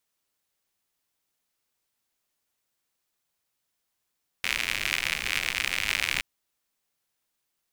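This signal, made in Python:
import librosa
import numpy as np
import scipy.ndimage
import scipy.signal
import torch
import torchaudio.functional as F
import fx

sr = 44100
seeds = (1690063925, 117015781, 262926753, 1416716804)

y = fx.rain(sr, seeds[0], length_s=1.77, drops_per_s=94.0, hz=2300.0, bed_db=-13.5)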